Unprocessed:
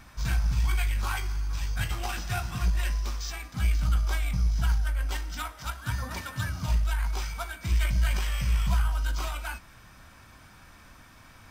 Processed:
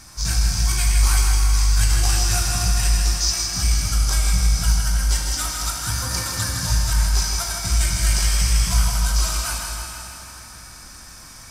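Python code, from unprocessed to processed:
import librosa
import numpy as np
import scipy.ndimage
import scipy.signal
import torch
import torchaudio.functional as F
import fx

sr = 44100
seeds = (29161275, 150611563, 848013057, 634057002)

y = fx.band_shelf(x, sr, hz=7300.0, db=15.0, octaves=1.7)
y = fx.echo_feedback(y, sr, ms=160, feedback_pct=60, wet_db=-6.0)
y = fx.rev_plate(y, sr, seeds[0], rt60_s=3.2, hf_ratio=0.8, predelay_ms=0, drr_db=0.5)
y = F.gain(torch.from_numpy(y), 2.0).numpy()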